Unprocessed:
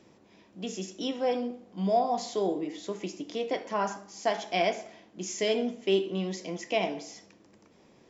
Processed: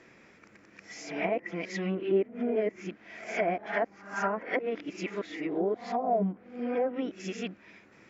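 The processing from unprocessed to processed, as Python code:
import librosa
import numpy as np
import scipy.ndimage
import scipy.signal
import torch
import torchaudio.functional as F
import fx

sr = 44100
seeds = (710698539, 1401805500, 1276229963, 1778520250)

y = x[::-1].copy()
y = fx.env_lowpass_down(y, sr, base_hz=720.0, full_db=-25.0)
y = fx.band_shelf(y, sr, hz=1800.0, db=12.0, octaves=1.2)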